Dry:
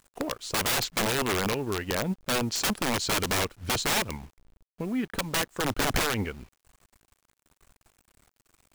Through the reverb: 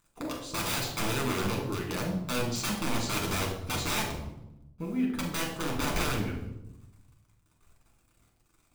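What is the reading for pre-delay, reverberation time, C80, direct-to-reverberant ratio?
7 ms, 0.90 s, 8.0 dB, −1.5 dB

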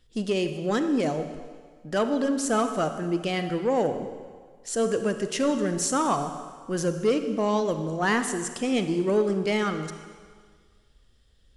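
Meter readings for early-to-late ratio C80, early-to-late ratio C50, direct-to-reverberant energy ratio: 10.0 dB, 8.5 dB, 8.0 dB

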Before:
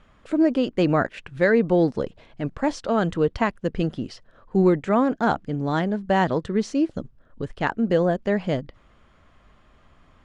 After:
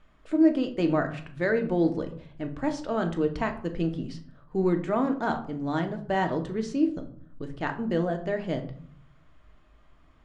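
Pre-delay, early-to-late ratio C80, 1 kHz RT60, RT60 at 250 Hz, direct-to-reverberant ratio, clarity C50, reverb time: 3 ms, 16.0 dB, 0.50 s, 0.85 s, 5.0 dB, 12.0 dB, 0.55 s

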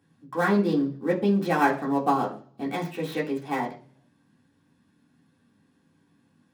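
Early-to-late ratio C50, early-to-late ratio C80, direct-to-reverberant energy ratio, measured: 11.5 dB, 16.0 dB, −5.0 dB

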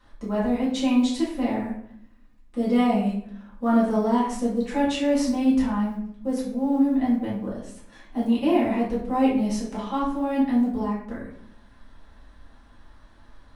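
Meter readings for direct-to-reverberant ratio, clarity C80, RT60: −8.0 dB, 7.5 dB, 0.65 s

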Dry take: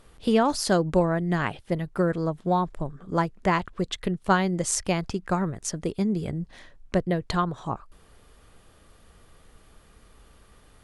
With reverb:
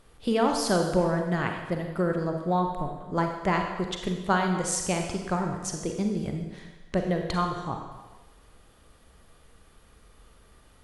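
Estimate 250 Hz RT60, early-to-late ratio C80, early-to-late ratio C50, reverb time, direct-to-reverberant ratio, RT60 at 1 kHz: 1.1 s, 6.5 dB, 4.5 dB, 1.1 s, 3.0 dB, 1.2 s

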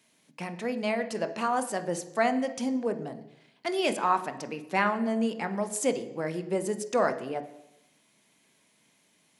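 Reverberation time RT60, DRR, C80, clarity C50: 0.90 s, 8.5 dB, 15.0 dB, 12.5 dB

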